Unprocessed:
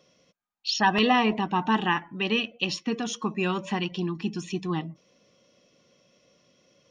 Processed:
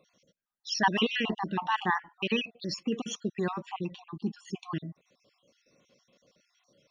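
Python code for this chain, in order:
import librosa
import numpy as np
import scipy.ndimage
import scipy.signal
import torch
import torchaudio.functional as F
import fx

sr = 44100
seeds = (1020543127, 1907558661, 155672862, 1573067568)

y = fx.spec_dropout(x, sr, seeds[0], share_pct=49)
y = fx.high_shelf(y, sr, hz=2000.0, db=-8.5, at=(3.49, 4.45))
y = y * librosa.db_to_amplitude(-2.0)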